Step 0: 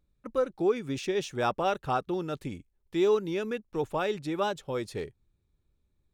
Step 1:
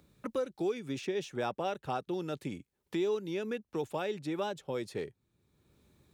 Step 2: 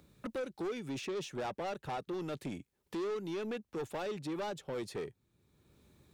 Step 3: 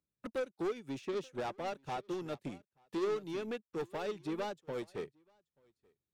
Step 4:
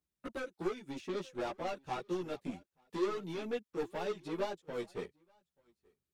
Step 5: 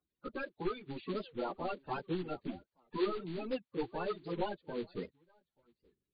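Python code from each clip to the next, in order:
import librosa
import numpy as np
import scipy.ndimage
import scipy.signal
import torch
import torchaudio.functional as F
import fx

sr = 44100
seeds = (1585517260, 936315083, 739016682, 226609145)

y1 = scipy.signal.sosfilt(scipy.signal.butter(2, 99.0, 'highpass', fs=sr, output='sos'), x)
y1 = fx.dynamic_eq(y1, sr, hz=1200.0, q=2.4, threshold_db=-46.0, ratio=4.0, max_db=-5)
y1 = fx.band_squash(y1, sr, depth_pct=70)
y1 = F.gain(torch.from_numpy(y1), -5.0).numpy()
y2 = 10.0 ** (-35.0 / 20.0) * np.tanh(y1 / 10.0 ** (-35.0 / 20.0))
y2 = F.gain(torch.from_numpy(y2), 1.5).numpy()
y3 = y2 + 10.0 ** (-12.5 / 20.0) * np.pad(y2, (int(881 * sr / 1000.0), 0))[:len(y2)]
y3 = fx.upward_expand(y3, sr, threshold_db=-57.0, expansion=2.5)
y3 = F.gain(torch.from_numpy(y3), 4.0).numpy()
y4 = fx.chorus_voices(y3, sr, voices=6, hz=0.64, base_ms=14, depth_ms=3.2, mix_pct=55)
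y4 = F.gain(torch.from_numpy(y4), 3.5).numpy()
y5 = fx.spec_quant(y4, sr, step_db=30)
y5 = fx.brickwall_lowpass(y5, sr, high_hz=4700.0)
y5 = fx.record_warp(y5, sr, rpm=78.0, depth_cents=160.0)
y5 = F.gain(torch.from_numpy(y5), 1.0).numpy()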